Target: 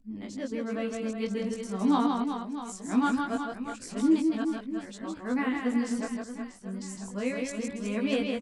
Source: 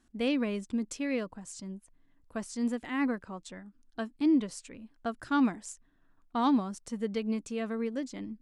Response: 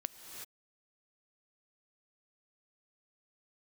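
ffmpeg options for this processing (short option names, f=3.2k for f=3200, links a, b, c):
-af "areverse,flanger=delay=18.5:depth=2.4:speed=0.24,aecho=1:1:160|368|638.4|989.9|1447:0.631|0.398|0.251|0.158|0.1,volume=3.5dB"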